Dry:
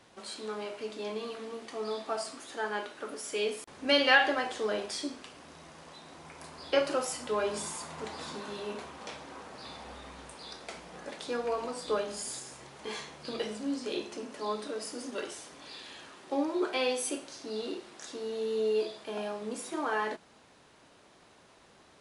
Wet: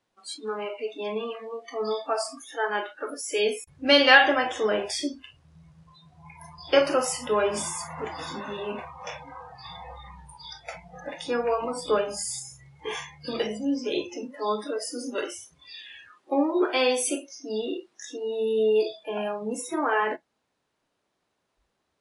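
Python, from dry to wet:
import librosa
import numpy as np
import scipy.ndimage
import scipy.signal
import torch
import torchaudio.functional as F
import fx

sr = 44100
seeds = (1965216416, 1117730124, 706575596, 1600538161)

y = fx.noise_reduce_blind(x, sr, reduce_db=25)
y = y * 10.0 ** (7.0 / 20.0)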